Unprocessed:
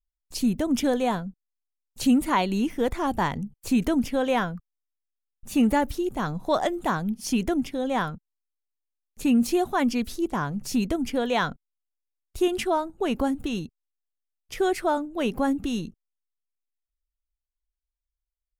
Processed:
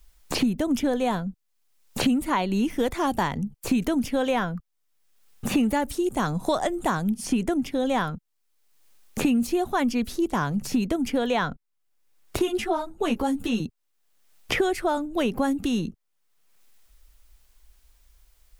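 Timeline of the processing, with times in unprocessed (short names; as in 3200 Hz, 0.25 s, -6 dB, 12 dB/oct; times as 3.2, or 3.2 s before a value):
5.85–7.58 bell 8500 Hz +9 dB 0.78 oct
12.39–13.6 ensemble effect
whole clip: three-band squash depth 100%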